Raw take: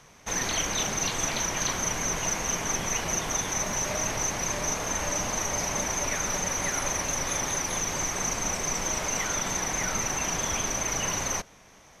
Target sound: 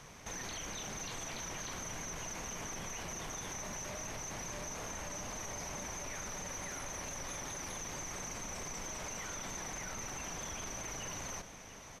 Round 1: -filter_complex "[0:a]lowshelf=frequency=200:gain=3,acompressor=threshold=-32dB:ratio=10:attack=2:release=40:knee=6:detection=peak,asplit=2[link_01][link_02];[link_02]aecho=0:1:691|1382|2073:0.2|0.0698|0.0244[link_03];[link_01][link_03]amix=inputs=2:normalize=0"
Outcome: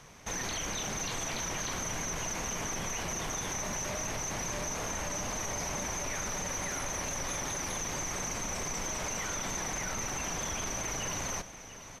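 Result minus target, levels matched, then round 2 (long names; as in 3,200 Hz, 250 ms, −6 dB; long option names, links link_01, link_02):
downward compressor: peak gain reduction −7 dB
-filter_complex "[0:a]lowshelf=frequency=200:gain=3,acompressor=threshold=-40dB:ratio=10:attack=2:release=40:knee=6:detection=peak,asplit=2[link_01][link_02];[link_02]aecho=0:1:691|1382|2073:0.2|0.0698|0.0244[link_03];[link_01][link_03]amix=inputs=2:normalize=0"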